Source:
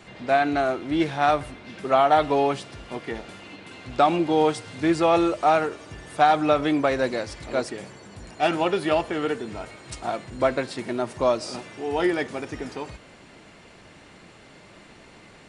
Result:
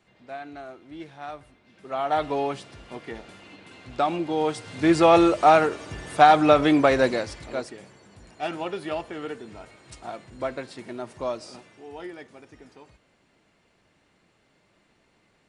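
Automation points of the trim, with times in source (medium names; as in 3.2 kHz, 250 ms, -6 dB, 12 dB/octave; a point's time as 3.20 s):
1.72 s -17 dB
2.16 s -5 dB
4.40 s -5 dB
4.97 s +3.5 dB
7.04 s +3.5 dB
7.77 s -8 dB
11.37 s -8 dB
12.08 s -16 dB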